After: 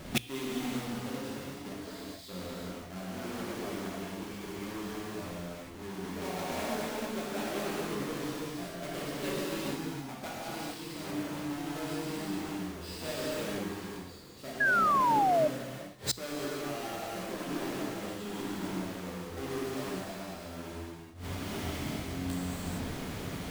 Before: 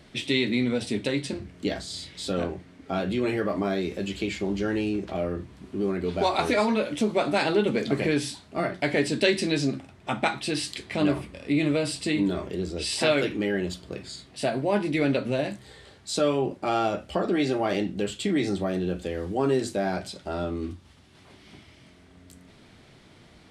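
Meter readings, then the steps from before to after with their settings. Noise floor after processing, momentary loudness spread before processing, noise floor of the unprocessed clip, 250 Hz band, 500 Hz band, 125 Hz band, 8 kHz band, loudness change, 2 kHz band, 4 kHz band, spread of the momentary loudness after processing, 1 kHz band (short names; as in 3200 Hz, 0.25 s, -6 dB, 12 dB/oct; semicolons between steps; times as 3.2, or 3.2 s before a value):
-46 dBFS, 10 LU, -54 dBFS, -9.5 dB, -10.5 dB, -8.0 dB, -4.0 dB, -8.0 dB, -4.5 dB, -8.5 dB, 9 LU, -1.5 dB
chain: half-waves squared off; non-linear reverb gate 0.48 s flat, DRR -8 dB; flipped gate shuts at -19 dBFS, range -25 dB; notches 60/120 Hz; painted sound fall, 14.6–15.48, 590–1700 Hz -27 dBFS; gain +1.5 dB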